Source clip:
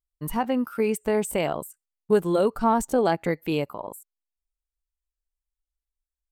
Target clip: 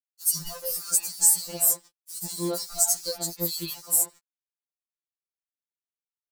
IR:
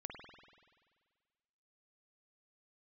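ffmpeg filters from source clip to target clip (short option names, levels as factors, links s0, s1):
-filter_complex "[0:a]acompressor=threshold=0.0251:ratio=10,aexciter=amount=11.3:drive=1.7:freq=3000,acrusher=bits=6:mix=0:aa=0.000001,acrossover=split=5700[s0][s1];[s1]acompressor=threshold=0.0708:ratio=4:attack=1:release=60[s2];[s0][s2]amix=inputs=2:normalize=0,highshelf=f=3900:t=q:w=3:g=7.5,acrossover=split=3800[s3][s4];[s3]adelay=150[s5];[s5][s4]amix=inputs=2:normalize=0,aeval=exprs='sgn(val(0))*max(abs(val(0))-0.00355,0)':c=same,afftfilt=real='re*2.83*eq(mod(b,8),0)':imag='im*2.83*eq(mod(b,8),0)':win_size=2048:overlap=0.75,volume=1.19"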